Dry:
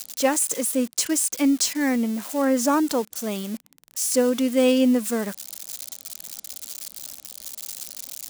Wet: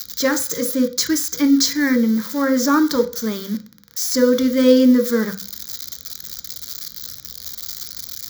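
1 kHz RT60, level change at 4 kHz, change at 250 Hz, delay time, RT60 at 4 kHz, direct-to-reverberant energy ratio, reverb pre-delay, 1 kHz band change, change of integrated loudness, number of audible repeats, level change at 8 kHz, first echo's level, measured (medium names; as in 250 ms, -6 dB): 0.45 s, +6.5 dB, +5.5 dB, no echo, 0.40 s, 6.0 dB, 3 ms, +1.5 dB, +4.5 dB, no echo, +0.5 dB, no echo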